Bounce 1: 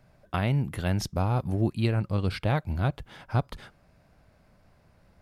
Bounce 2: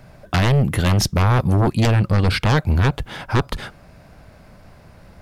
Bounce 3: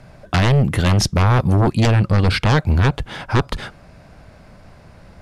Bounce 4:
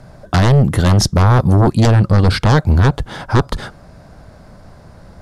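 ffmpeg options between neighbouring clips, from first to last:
ffmpeg -i in.wav -af "aeval=exprs='0.224*sin(PI/2*3.16*val(0)/0.224)':channel_layout=same,volume=1dB" out.wav
ffmpeg -i in.wav -af "lowpass=9900,volume=1.5dB" out.wav
ffmpeg -i in.wav -af "equalizer=frequency=2500:width_type=o:width=0.77:gain=-9,volume=4dB" out.wav

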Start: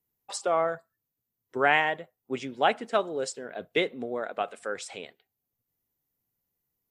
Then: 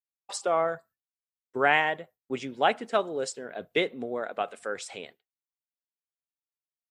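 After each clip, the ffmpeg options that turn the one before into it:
ffmpeg -i in.wav -af "agate=range=-33dB:threshold=-48dB:ratio=3:detection=peak" out.wav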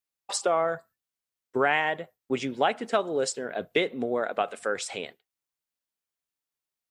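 ffmpeg -i in.wav -af "acompressor=threshold=-27dB:ratio=3,volume=5.5dB" out.wav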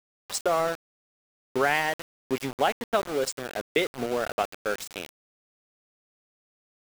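ffmpeg -i in.wav -af "aeval=exprs='val(0)*gte(abs(val(0)),0.0316)':channel_layout=same" out.wav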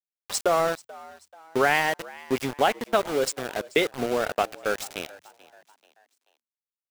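ffmpeg -i in.wav -filter_complex "[0:a]asplit=4[link_01][link_02][link_03][link_04];[link_02]adelay=435,afreqshift=77,volume=-21dB[link_05];[link_03]adelay=870,afreqshift=154,volume=-28.1dB[link_06];[link_04]adelay=1305,afreqshift=231,volume=-35.3dB[link_07];[link_01][link_05][link_06][link_07]amix=inputs=4:normalize=0,volume=2.5dB" out.wav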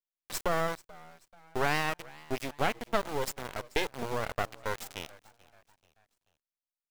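ffmpeg -i in.wav -af "aeval=exprs='max(val(0),0)':channel_layout=same,volume=-4dB" out.wav

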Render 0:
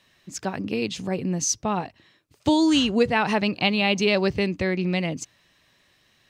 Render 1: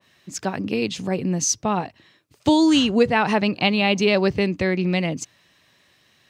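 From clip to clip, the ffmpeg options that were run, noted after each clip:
ffmpeg -i in.wav -af "highpass=76,adynamicequalizer=threshold=0.02:dfrequency=2000:dqfactor=0.7:tfrequency=2000:tqfactor=0.7:attack=5:release=100:ratio=0.375:range=1.5:mode=cutabove:tftype=highshelf,volume=3dB" out.wav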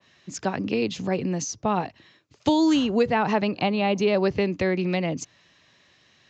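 ffmpeg -i in.wav -filter_complex "[0:a]acrossover=split=300|1300[link_01][link_02][link_03];[link_01]acompressor=threshold=-28dB:ratio=4[link_04];[link_02]acompressor=threshold=-19dB:ratio=4[link_05];[link_03]acompressor=threshold=-32dB:ratio=4[link_06];[link_04][link_05][link_06]amix=inputs=3:normalize=0,aresample=16000,aresample=44100" out.wav

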